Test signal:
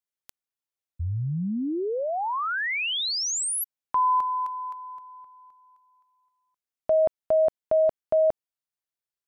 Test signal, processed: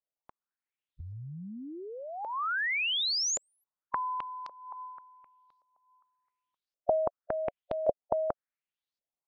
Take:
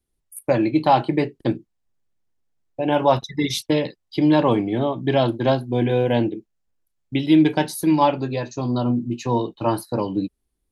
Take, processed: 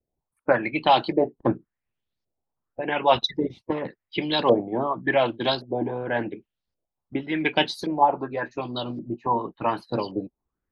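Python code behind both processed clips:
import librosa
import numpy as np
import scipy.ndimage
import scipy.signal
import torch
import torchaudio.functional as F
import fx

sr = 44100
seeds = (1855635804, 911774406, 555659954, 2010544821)

y = fx.hpss(x, sr, part='harmonic', gain_db=-14)
y = fx.filter_lfo_lowpass(y, sr, shape='saw_up', hz=0.89, low_hz=550.0, high_hz=5000.0, q=3.8)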